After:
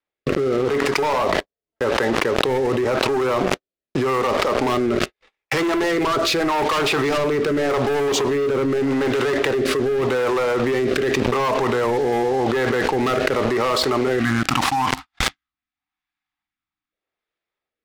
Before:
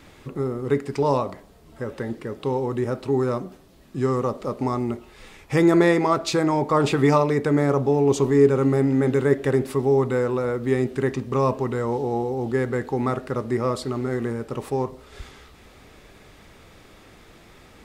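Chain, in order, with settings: gate -39 dBFS, range -54 dB; three-band isolator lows -16 dB, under 410 Hz, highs -17 dB, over 5.4 kHz; spectral selection erased 14.19–16.92 s, 330–700 Hz; dynamic bell 520 Hz, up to -3 dB, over -35 dBFS, Q 3.4; waveshaping leveller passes 5; rotary cabinet horn 0.85 Hz; level flattener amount 100%; trim -8.5 dB

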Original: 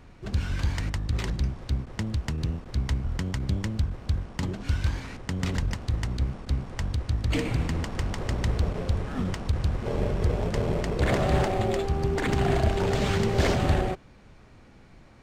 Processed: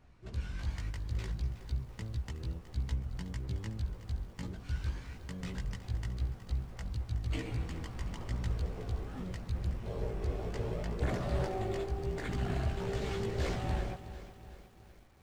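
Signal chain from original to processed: chorus voices 4, 0.35 Hz, delay 17 ms, depth 1.4 ms; bit-crushed delay 369 ms, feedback 55%, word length 8-bit, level -13 dB; trim -9 dB

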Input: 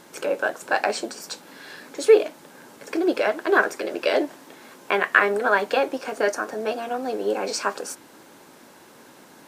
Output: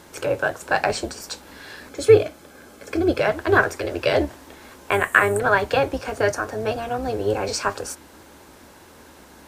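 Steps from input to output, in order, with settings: octave divider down 2 oct, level -3 dB; 1.89–3.19 s: comb of notches 930 Hz; 4.91–5.40 s: resonant high shelf 6.6 kHz +8.5 dB, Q 3; trim +1.5 dB

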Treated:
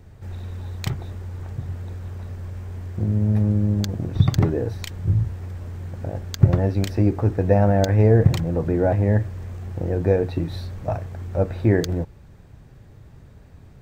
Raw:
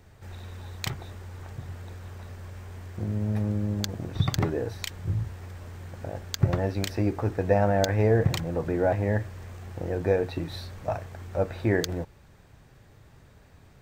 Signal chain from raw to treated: bass shelf 480 Hz +10 dB; trim -1 dB

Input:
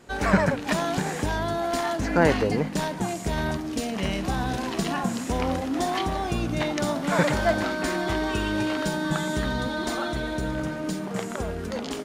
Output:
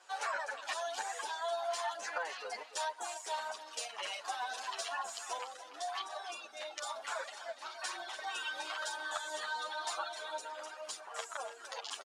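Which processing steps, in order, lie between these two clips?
octave divider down 2 oct, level +2 dB; high-pass 730 Hz 24 dB/octave; reverb removal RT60 1.6 s; low-pass 10 kHz 24 dB/octave; peaking EQ 2.1 kHz -6.5 dB 0.41 oct; compression 6:1, threshold -32 dBFS, peak gain reduction 11 dB; phaser 1 Hz, delay 4.7 ms, feedback 38%; 5.38–8.19 s: rotary cabinet horn 1.1 Hz; delay 290 ms -12 dB; endless flanger 8.9 ms +0.27 Hz

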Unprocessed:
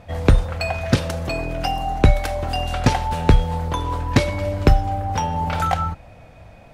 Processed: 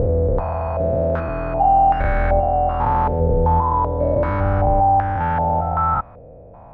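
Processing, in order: spectrogram pixelated in time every 400 ms; step-sequenced low-pass 2.6 Hz 500–1600 Hz; trim +2 dB

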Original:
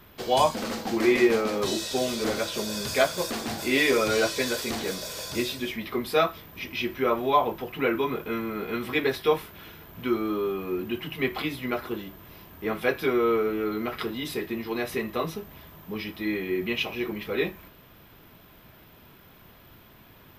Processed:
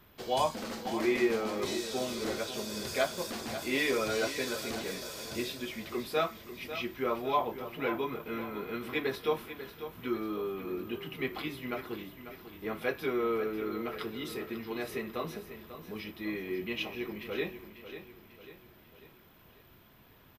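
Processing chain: feedback delay 544 ms, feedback 48%, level -11.5 dB; trim -7.5 dB

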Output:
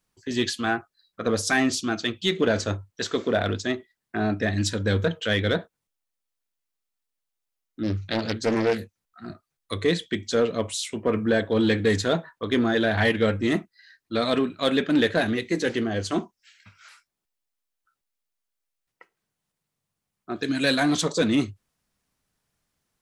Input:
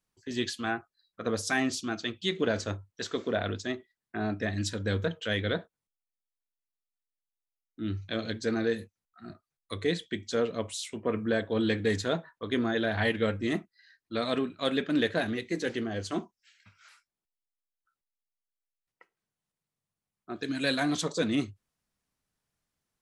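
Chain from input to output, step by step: in parallel at -6.5 dB: hard clipper -25 dBFS, distortion -11 dB; 7.83–9.27 s: on the sum: loudspeaker Doppler distortion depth 0.41 ms; trim +3.5 dB

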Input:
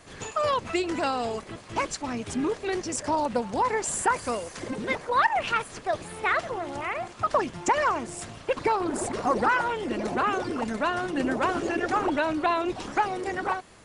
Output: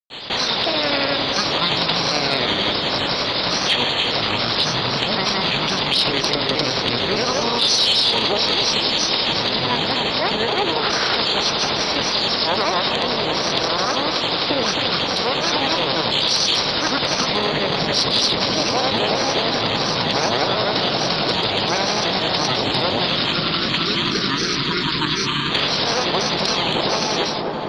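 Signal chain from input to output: spectral levelling over time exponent 0.4; gate with hold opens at -15 dBFS; pre-emphasis filter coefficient 0.8; spectral selection erased 11.57–12.76 s, 820–2100 Hz; treble shelf 2.5 kHz +10.5 dB; overload inside the chain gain 13 dB; granulator 78 ms, grains 23 per s, pitch spread up and down by 3 st; on a send: feedback echo behind a low-pass 132 ms, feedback 76%, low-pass 2.4 kHz, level -8 dB; on the sum: speed mistake 15 ips tape played at 7.5 ips; level flattener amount 50%; trim +3.5 dB

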